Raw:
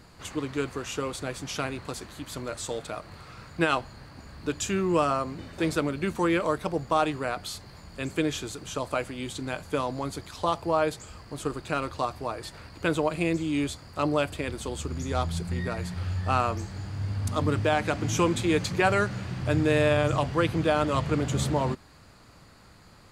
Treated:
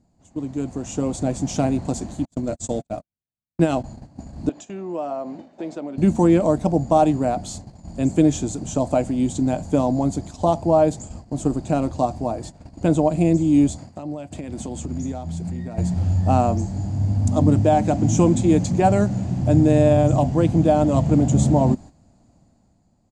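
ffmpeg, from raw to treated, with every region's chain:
-filter_complex "[0:a]asettb=1/sr,asplit=3[s0][s1][s2];[s0]atrim=end=2.254[s3];[s1]atrim=start=2.25:end=3.84,asetpts=PTS-STARTPTS,afade=t=in:d=0.004:c=qsin,afade=t=out:st=1.586:d=0.004:c=qsin,agate=range=0.00316:threshold=0.0158:ratio=16:release=100:detection=peak,equalizer=f=870:w=1.9:g=-4[s4];[s2]atrim=start=3.836[s5];[s3][s4]acrossfade=d=0.004:c1=hsin:c2=qsin[s6];[s6][s5]acrossfade=d=0.004:c1=qsin:c2=hsin,asettb=1/sr,asplit=3[s7][s8][s9];[s7]atrim=end=4.494[s10];[s8]atrim=start=4.49:end=5.98,asetpts=PTS-STARTPTS,afade=t=in:d=0.004:c=qsin,afade=t=out:st=1.486:d=0.004:c=qsin,acompressor=threshold=0.0178:ratio=2.5:attack=3.2:release=140:knee=1:detection=peak,highpass=410,lowpass=3700[s11];[s9]atrim=start=5.976[s12];[s10][s11]acrossfade=d=0.004:c1=hsin:c2=qsin[s13];[s13][s12]acrossfade=d=0.004:c1=qsin:c2=hsin,asettb=1/sr,asplit=3[s14][s15][s16];[s14]atrim=end=13.784[s17];[s15]atrim=start=13.78:end=15.78,asetpts=PTS-STARTPTS,afade=t=in:d=0.004:c=qsin,afade=t=out:st=1.996:d=0.004:c=qsin,highpass=77,equalizer=f=2100:w=0.92:g=5.5,acompressor=threshold=0.0141:ratio=10:attack=3.2:release=140:knee=1:detection=peak[s18];[s16]atrim=start=15.776[s19];[s17][s18]acrossfade=d=0.004:c1=hsin:c2=qsin[s20];[s20][s19]acrossfade=d=0.004:c1=qsin:c2=hsin,dynaudnorm=f=200:g=9:m=3.76,firequalizer=gain_entry='entry(120,0);entry(240,6);entry(430,-8);entry(690,2);entry(1200,-18);entry(2700,-16);entry(4500,-14);entry(7100,-1);entry(12000,-25)':delay=0.05:min_phase=1,agate=range=0.251:threshold=0.0158:ratio=16:detection=peak,volume=1.19"

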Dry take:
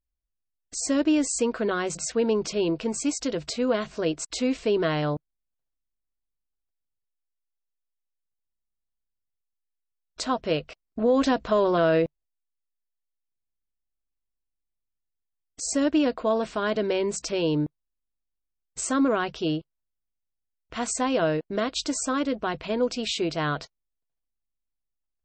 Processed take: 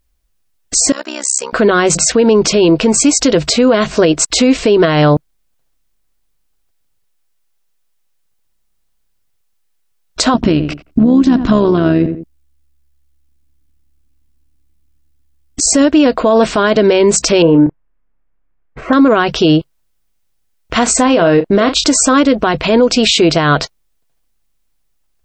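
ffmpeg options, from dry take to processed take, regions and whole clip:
-filter_complex "[0:a]asettb=1/sr,asplit=3[s0][s1][s2];[s0]atrim=end=0.924[s3];[s1]atrim=start=0.92:end=1.53,asetpts=PTS-STARTPTS,afade=t=in:d=0.004:c=qsin,afade=t=out:st=0.606:d=0.004:c=qsin,highpass=1300,equalizer=f=2700:t=o:w=1.6:g=-10.5,tremolo=f=66:d=0.974[s4];[s2]atrim=start=1.526[s5];[s3][s4]acrossfade=d=0.004:c1=hsin:c2=qsin[s6];[s6][s5]acrossfade=d=0.004:c1=qsin:c2=hsin,asettb=1/sr,asplit=3[s7][s8][s9];[s7]atrim=end=10.344[s10];[s8]atrim=start=10.34:end=15.67,asetpts=PTS-STARTPTS,afade=t=in:d=0.004:c=qsin,afade=t=out:st=5.326:d=0.004:c=qsin,lowshelf=f=380:t=q:w=3:g=8,tremolo=f=71:d=0.519,asplit=2[s11][s12];[s12]adelay=87,lowpass=f=1400:p=1,volume=0.2,asplit=2[s13][s14];[s14]adelay=87,lowpass=f=1400:p=1,volume=0.22[s15];[s11][s13][s15]amix=inputs=3:normalize=0,atrim=end_sample=235053[s16];[s9]atrim=start=15.666[s17];[s10][s16]acrossfade=d=0.004:c1=hsin:c2=qsin[s18];[s18][s17]acrossfade=d=0.004:c1=qsin:c2=hsin,asettb=1/sr,asplit=3[s19][s20][s21];[s19]atrim=end=17.424[s22];[s20]atrim=start=17.42:end=18.93,asetpts=PTS-STARTPTS,afade=t=in:d=0.004:c=qsin,afade=t=out:st=1.506:d=0.004:c=qsin,lowpass=f=2000:w=0.5412,lowpass=f=2000:w=1.3066,asplit=2[s23][s24];[s24]adelay=30,volume=0.398[s25];[s23][s25]amix=inputs=2:normalize=0,atrim=end_sample=66591[s26];[s21]atrim=start=18.926[s27];[s22][s26]acrossfade=d=0.004:c1=hsin:c2=qsin[s28];[s28][s27]acrossfade=d=0.004:c1=qsin:c2=hsin,asettb=1/sr,asplit=3[s29][s30][s31];[s29]atrim=end=20.834[s32];[s30]atrim=start=20.83:end=21.84,asetpts=PTS-STARTPTS,afade=t=in:d=0.004:c=qsin,afade=t=out:st=1.006:d=0.004:c=qsin,highshelf=f=4700:g=-6.5,asplit=2[s33][s34];[s34]adelay=35,volume=0.299[s35];[s33][s35]amix=inputs=2:normalize=0,atrim=end_sample=44541[s36];[s31]atrim=start=21.836[s37];[s32][s36]acrossfade=d=0.004:c1=hsin:c2=qsin[s38];[s38][s37]acrossfade=d=0.004:c1=qsin:c2=hsin,acompressor=threshold=0.0562:ratio=6,alimiter=level_in=13.3:limit=0.891:release=50:level=0:latency=1,volume=0.891"

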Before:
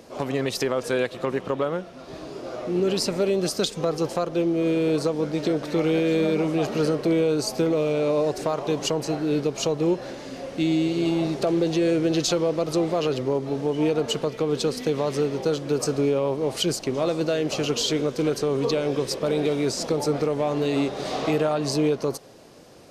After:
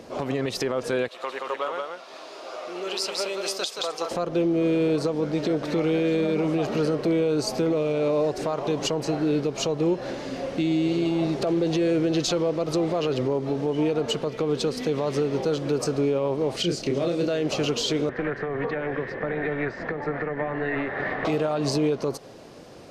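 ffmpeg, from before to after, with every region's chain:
-filter_complex "[0:a]asettb=1/sr,asplit=3[s0][s1][s2];[s0]atrim=end=1.084[s3];[s1]atrim=start=1.08:end=4.11,asetpts=PTS-STARTPTS,afade=t=in:d=0.004:c=qsin,afade=t=out:st=3.026:d=0.004:c=qsin,highpass=870,equalizer=f=1700:w=2.2:g=-3.5,aecho=1:1:175:0.631,atrim=end_sample=133623[s4];[s2]atrim=start=4.106[s5];[s3][s4]acrossfade=d=0.004:c1=hsin:c2=qsin[s6];[s6][s5]acrossfade=d=0.004:c1=qsin:c2=hsin,asettb=1/sr,asplit=3[s7][s8][s9];[s7]atrim=end=16.564[s10];[s8]atrim=start=16.56:end=17.28,asetpts=PTS-STARTPTS,afade=t=in:d=0.004:c=qsin,afade=t=out:st=0.716:d=0.004:c=qsin,acrossover=split=7100[s11][s12];[s12]acompressor=threshold=0.00501:ratio=4:attack=1:release=60[s13];[s11][s13]amix=inputs=2:normalize=0,equalizer=f=970:t=o:w=0.84:g=-9.5,asplit=2[s14][s15];[s15]adelay=29,volume=0.631[s16];[s14][s16]amix=inputs=2:normalize=0,atrim=end_sample=31752[s17];[s9]atrim=start=17.276[s18];[s10][s17]acrossfade=d=0.004:c1=hsin:c2=qsin[s19];[s19][s18]acrossfade=d=0.004:c1=qsin:c2=hsin,asettb=1/sr,asplit=3[s20][s21][s22];[s20]atrim=end=18.094[s23];[s21]atrim=start=18.09:end=21.25,asetpts=PTS-STARTPTS,afade=t=in:d=0.004:c=qsin,afade=t=out:st=3.156:d=0.004:c=qsin,acrossover=split=160|420[s24][s25][s26];[s24]acompressor=threshold=0.00794:ratio=4[s27];[s25]acompressor=threshold=0.0178:ratio=4[s28];[s26]acompressor=threshold=0.0251:ratio=4[s29];[s27][s28][s29]amix=inputs=3:normalize=0,lowpass=f=1800:t=q:w=13,tremolo=f=290:d=0.571[s30];[s22]atrim=start=21.246[s31];[s23][s30]acrossfade=d=0.004:c1=hsin:c2=qsin[s32];[s32][s31]acrossfade=d=0.004:c1=qsin:c2=hsin,highshelf=f=7200:g=-9.5,alimiter=limit=0.1:level=0:latency=1:release=163,volume=1.58"

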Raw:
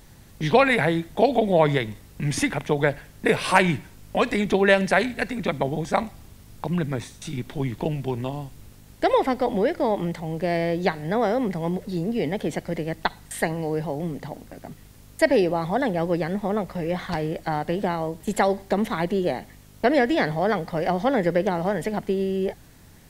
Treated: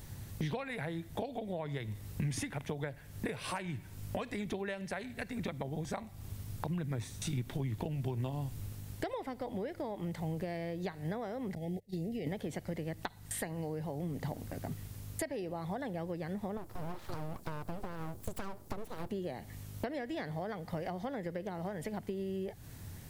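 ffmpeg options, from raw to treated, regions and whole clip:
-filter_complex "[0:a]asettb=1/sr,asplit=3[s0][s1][s2];[s0]atrim=end=11.554[s3];[s1]atrim=start=11.55:end=12.27,asetpts=PTS-STARTPTS,afade=t=in:d=0.004:c=qsin,afade=t=out:st=0.716:d=0.004:c=qsin,agate=range=0.0282:threshold=0.0355:ratio=16:release=100:detection=peak,acompressor=threshold=0.0282:ratio=4:attack=3.2:release=140:knee=1:detection=peak,asuperstop=centerf=1200:order=20:qfactor=1.3[s4];[s2]atrim=start=12.266[s5];[s3][s4]acrossfade=d=0.004:c1=hsin:c2=qsin[s6];[s6][s5]acrossfade=d=0.004:c1=qsin:c2=hsin,asettb=1/sr,asplit=3[s7][s8][s9];[s7]atrim=end=16.574[s10];[s8]atrim=start=16.57:end=19.11,asetpts=PTS-STARTPTS,afade=t=in:d=0.004:c=qsin,afade=t=out:st=2.536:d=0.004:c=qsin,equalizer=f=2100:t=o:w=1.8:g=-13.5,aeval=exprs='abs(val(0))':c=same[s11];[s9]atrim=start=19.106[s12];[s10][s11]acrossfade=d=0.004:c1=hsin:c2=qsin[s13];[s13][s12]acrossfade=d=0.004:c1=qsin:c2=hsin,highshelf=f=9700:g=6.5,acompressor=threshold=0.0224:ratio=16,equalizer=f=100:t=o:w=1:g=10.5,volume=0.75"

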